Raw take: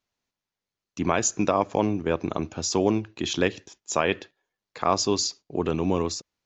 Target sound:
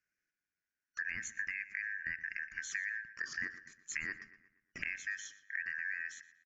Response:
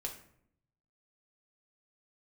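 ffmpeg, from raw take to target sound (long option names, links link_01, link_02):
-filter_complex "[0:a]afftfilt=real='real(if(lt(b,272),68*(eq(floor(b/68),0)*1+eq(floor(b/68),1)*0+eq(floor(b/68),2)*3+eq(floor(b/68),3)*2)+mod(b,68),b),0)':imag='imag(if(lt(b,272),68*(eq(floor(b/68),0)*1+eq(floor(b/68),1)*0+eq(floor(b/68),2)*3+eq(floor(b/68),3)*2)+mod(b,68),b),0)':win_size=2048:overlap=0.75,firequalizer=gain_entry='entry(300,0);entry(940,-22);entry(1400,4);entry(2400,0);entry(3600,-18);entry(5300,-2)':delay=0.05:min_phase=1,acompressor=threshold=-32dB:ratio=6,lowpass=7100,asplit=2[link_01][link_02];[link_02]adelay=119,lowpass=frequency=3000:poles=1,volume=-13.5dB,asplit=2[link_03][link_04];[link_04]adelay=119,lowpass=frequency=3000:poles=1,volume=0.48,asplit=2[link_05][link_06];[link_06]adelay=119,lowpass=frequency=3000:poles=1,volume=0.48,asplit=2[link_07][link_08];[link_08]adelay=119,lowpass=frequency=3000:poles=1,volume=0.48,asplit=2[link_09][link_10];[link_10]adelay=119,lowpass=frequency=3000:poles=1,volume=0.48[link_11];[link_01][link_03][link_05][link_07][link_09][link_11]amix=inputs=6:normalize=0,volume=-4.5dB"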